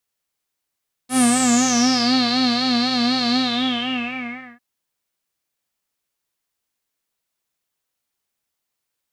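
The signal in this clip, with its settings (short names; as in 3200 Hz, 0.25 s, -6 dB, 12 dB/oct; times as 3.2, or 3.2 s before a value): synth patch with vibrato B3, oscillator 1 square, oscillator 2 saw, interval 0 st, detune 23 cents, oscillator 2 level -3 dB, sub -23 dB, noise -11.5 dB, filter lowpass, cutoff 1800 Hz, Q 9.6, filter envelope 2.5 oct, filter decay 1.09 s, filter sustain 50%, attack 83 ms, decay 1.42 s, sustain -4 dB, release 1.23 s, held 2.27 s, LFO 4 Hz, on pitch 82 cents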